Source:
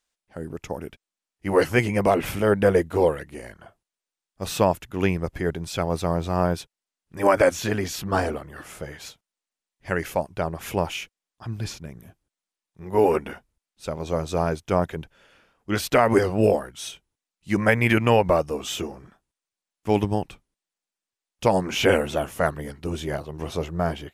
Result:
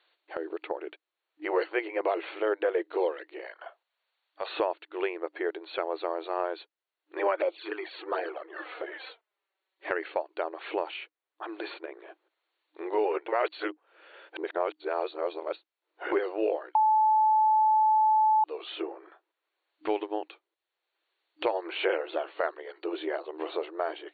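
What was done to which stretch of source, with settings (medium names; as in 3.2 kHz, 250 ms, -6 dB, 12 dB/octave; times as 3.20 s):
3.45–4.50 s: high-pass 530 Hz 24 dB/octave
7.35–9.91 s: touch-sensitive flanger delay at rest 5.3 ms, full sweep at -16.5 dBFS
13.28–16.12 s: reverse
16.75–18.44 s: bleep 867 Hz -9 dBFS
whole clip: FFT band-pass 310–4500 Hz; three bands compressed up and down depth 70%; trim -7 dB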